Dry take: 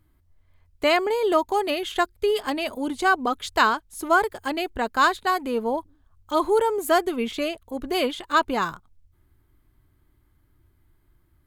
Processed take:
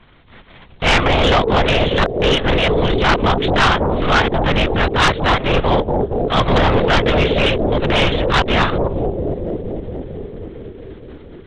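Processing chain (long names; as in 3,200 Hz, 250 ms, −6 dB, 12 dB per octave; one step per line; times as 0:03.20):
compressing power law on the bin magnitudes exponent 0.48
on a send: bucket-brigade delay 229 ms, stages 1,024, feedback 81%, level −5 dB
on the sum: linear-prediction vocoder at 8 kHz whisper
in parallel at +2.5 dB: downward compressor, threshold −28 dBFS, peak gain reduction 13 dB
on the sum: transient designer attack −8 dB, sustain −3 dB
sine wavefolder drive 7 dB, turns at −6 dBFS
level −2 dB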